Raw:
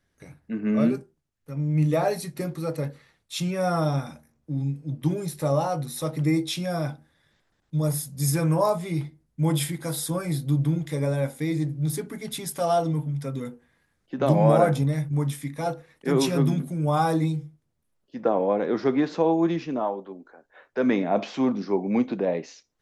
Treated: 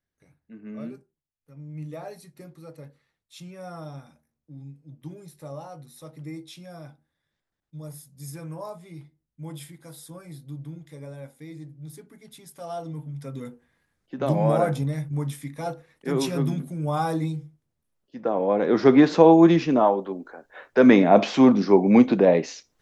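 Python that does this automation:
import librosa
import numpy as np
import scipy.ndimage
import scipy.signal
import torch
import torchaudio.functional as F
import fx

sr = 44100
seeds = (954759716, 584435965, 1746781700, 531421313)

y = fx.gain(x, sr, db=fx.line((12.48, -14.5), (13.45, -3.0), (18.26, -3.0), (18.93, 8.0)))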